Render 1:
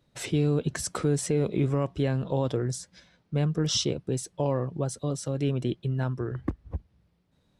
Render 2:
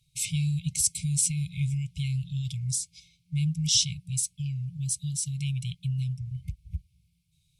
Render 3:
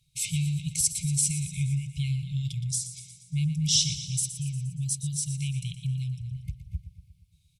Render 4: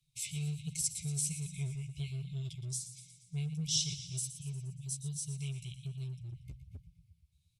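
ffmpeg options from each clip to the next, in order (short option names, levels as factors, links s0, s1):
-af "afftfilt=real='re*(1-between(b*sr/4096,180,2100))':imag='im*(1-between(b*sr/4096,180,2100))':win_size=4096:overlap=0.75,equalizer=f=9900:t=o:w=1.3:g=12"
-af "aecho=1:1:118|236|354|472|590|708|826:0.266|0.154|0.0895|0.0519|0.0301|0.0175|0.0101"
-filter_complex "[0:a]flanger=delay=5.5:depth=9.8:regen=-1:speed=1.3:shape=sinusoidal,acrossover=split=130|500|2000[s0][s1][s2][s3];[s0]asoftclip=type=hard:threshold=0.0106[s4];[s4][s1][s2][s3]amix=inputs=4:normalize=0,volume=0.501"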